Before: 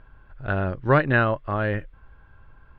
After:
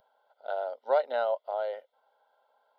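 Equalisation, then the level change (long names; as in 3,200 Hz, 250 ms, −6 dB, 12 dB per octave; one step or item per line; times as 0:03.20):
linear-phase brick-wall high-pass 250 Hz
phaser with its sweep stopped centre 710 Hz, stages 4
phaser with its sweep stopped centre 1,700 Hz, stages 8
0.0 dB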